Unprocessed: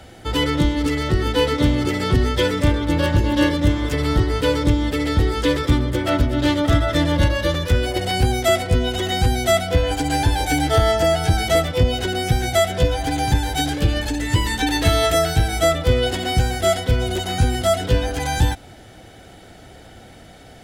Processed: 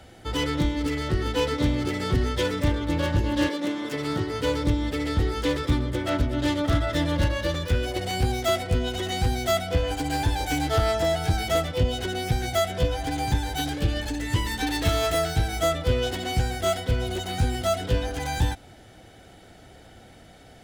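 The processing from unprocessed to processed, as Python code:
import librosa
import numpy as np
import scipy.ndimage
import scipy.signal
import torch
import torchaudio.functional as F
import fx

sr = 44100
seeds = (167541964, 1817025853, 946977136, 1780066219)

y = fx.self_delay(x, sr, depth_ms=0.1)
y = fx.highpass(y, sr, hz=fx.line((3.47, 300.0), (4.42, 82.0)), slope=24, at=(3.47, 4.42), fade=0.02)
y = F.gain(torch.from_numpy(y), -6.0).numpy()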